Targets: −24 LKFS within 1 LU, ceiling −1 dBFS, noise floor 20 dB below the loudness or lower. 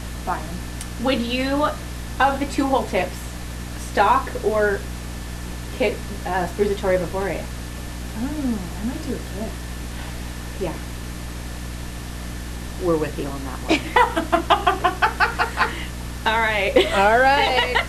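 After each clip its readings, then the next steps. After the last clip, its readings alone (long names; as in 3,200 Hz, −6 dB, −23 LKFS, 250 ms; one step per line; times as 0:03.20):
mains hum 60 Hz; hum harmonics up to 300 Hz; level of the hum −30 dBFS; background noise floor −32 dBFS; target noise floor −43 dBFS; integrated loudness −22.5 LKFS; sample peak −3.0 dBFS; target loudness −24.0 LKFS
→ hum removal 60 Hz, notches 5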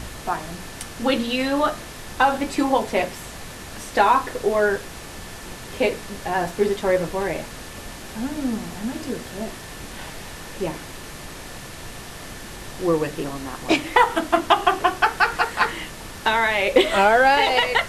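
mains hum none found; background noise floor −37 dBFS; target noise floor −42 dBFS
→ noise reduction from a noise print 6 dB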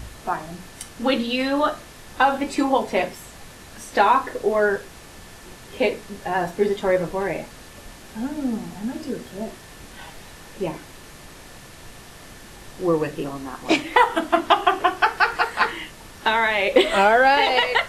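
background noise floor −43 dBFS; integrated loudness −21.5 LKFS; sample peak −2.5 dBFS; target loudness −24.0 LKFS
→ level −2.5 dB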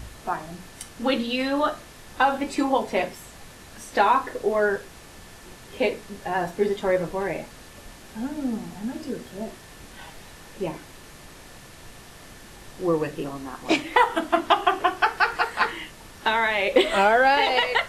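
integrated loudness −24.0 LKFS; sample peak −5.0 dBFS; background noise floor −46 dBFS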